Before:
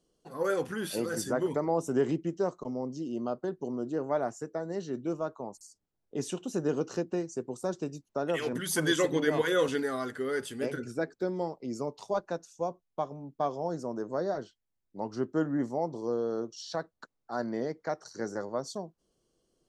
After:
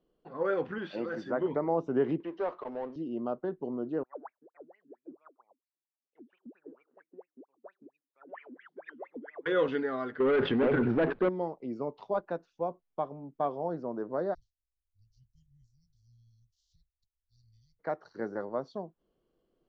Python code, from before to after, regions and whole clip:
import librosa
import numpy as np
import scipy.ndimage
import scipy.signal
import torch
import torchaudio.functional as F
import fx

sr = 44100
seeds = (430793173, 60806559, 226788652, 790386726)

y = fx.chain(x, sr, fx.highpass(hz=210.0, slope=6),
    fx.notch(hz=440.0, q=9.1), at=(0.78, 1.41))
y = fx.chain(y, sr, fx.bandpass_edges(low_hz=540.0, high_hz=4500.0),
    fx.power_curve(exponent=0.7), at=(2.2, 2.96))
y = fx.chain(y, sr, fx.wah_lfo(hz=4.4, low_hz=240.0, high_hz=2500.0, q=19.0),
    fx.low_shelf(hz=480.0, db=-6.0),
    fx.vibrato_shape(shape='saw_up', rate_hz=3.7, depth_cents=160.0), at=(4.03, 9.46))
y = fx.chain(y, sr, fx.air_absorb(metres=340.0),
    fx.leveller(passes=3),
    fx.env_flatten(amount_pct=70), at=(10.2, 11.29))
y = fx.spec_clip(y, sr, under_db=21, at=(14.33, 17.79), fade=0.02)
y = fx.cheby2_bandstop(y, sr, low_hz=350.0, high_hz=1600.0, order=4, stop_db=80, at=(14.33, 17.79), fade=0.02)
y = scipy.signal.sosfilt(scipy.signal.bessel(6, 2300.0, 'lowpass', norm='mag', fs=sr, output='sos'), y)
y = fx.peak_eq(y, sr, hz=100.0, db=-5.0, octaves=1.3)